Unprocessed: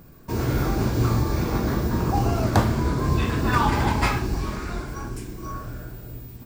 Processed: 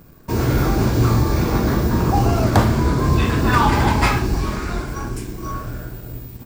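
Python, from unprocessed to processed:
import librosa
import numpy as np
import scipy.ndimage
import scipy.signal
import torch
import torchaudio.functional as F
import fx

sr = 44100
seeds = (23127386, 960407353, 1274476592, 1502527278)

y = fx.leveller(x, sr, passes=1)
y = F.gain(torch.from_numpy(y), 2.0).numpy()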